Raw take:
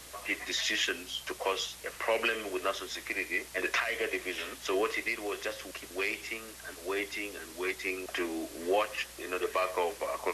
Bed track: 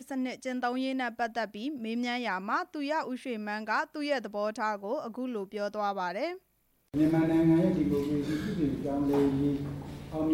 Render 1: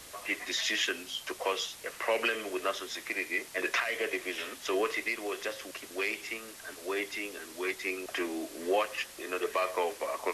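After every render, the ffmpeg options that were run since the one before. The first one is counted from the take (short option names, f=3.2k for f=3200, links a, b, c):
-af "bandreject=f=60:t=h:w=4,bandreject=f=120:t=h:w=4,bandreject=f=180:t=h:w=4"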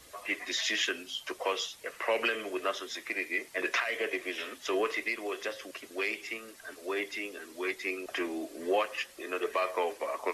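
-af "afftdn=nr=8:nf=-49"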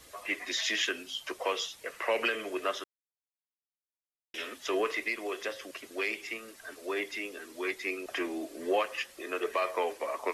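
-filter_complex "[0:a]asplit=3[a][b][c];[a]atrim=end=2.84,asetpts=PTS-STARTPTS,afade=t=out:st=2.836:d=0.004:c=hsin[d];[b]atrim=start=2.84:end=4.34,asetpts=PTS-STARTPTS,volume=0[e];[c]atrim=start=4.34,asetpts=PTS-STARTPTS,afade=t=in:d=0.004:c=hsin[f];[d][e][f]concat=n=3:v=0:a=1"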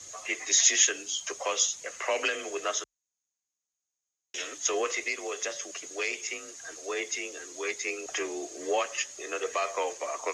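-af "afreqshift=36,lowpass=f=6.6k:t=q:w=15"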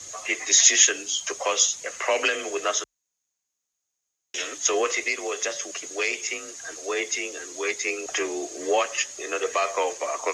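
-af "volume=5.5dB"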